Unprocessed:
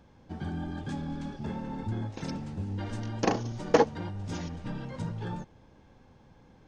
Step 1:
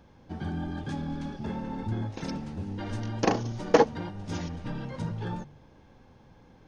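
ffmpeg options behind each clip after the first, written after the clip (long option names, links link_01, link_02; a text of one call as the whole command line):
ffmpeg -i in.wav -af "equalizer=frequency=7700:width=5.1:gain=-6.5,bandreject=frequency=48.78:width_type=h:width=4,bandreject=frequency=97.56:width_type=h:width=4,bandreject=frequency=146.34:width_type=h:width=4,bandreject=frequency=195.12:width_type=h:width=4,bandreject=frequency=243.9:width_type=h:width=4,volume=2dB" out.wav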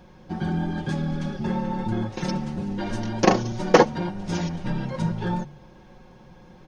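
ffmpeg -i in.wav -af "aecho=1:1:5.5:0.68,volume=5.5dB" out.wav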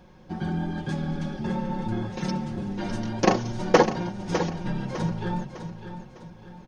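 ffmpeg -i in.wav -af "aecho=1:1:604|1208|1812|2416:0.316|0.123|0.0481|0.0188,volume=-2.5dB" out.wav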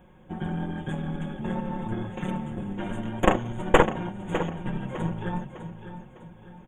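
ffmpeg -i in.wav -af "aeval=exprs='0.708*(cos(1*acos(clip(val(0)/0.708,-1,1)))-cos(1*PI/2))+0.251*(cos(4*acos(clip(val(0)/0.708,-1,1)))-cos(4*PI/2))':channel_layout=same,asuperstop=centerf=4900:order=12:qfactor=1.5,volume=-2dB" out.wav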